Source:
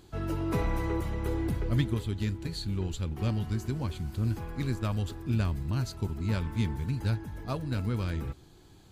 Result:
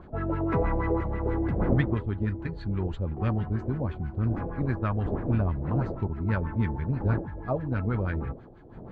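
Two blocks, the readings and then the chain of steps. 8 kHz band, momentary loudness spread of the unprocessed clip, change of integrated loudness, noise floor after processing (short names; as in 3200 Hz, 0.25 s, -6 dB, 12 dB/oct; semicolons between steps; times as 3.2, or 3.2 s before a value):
under -25 dB, 5 LU, +3.0 dB, -46 dBFS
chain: wind noise 290 Hz -41 dBFS; LFO low-pass sine 6.2 Hz 550–1900 Hz; gain +2 dB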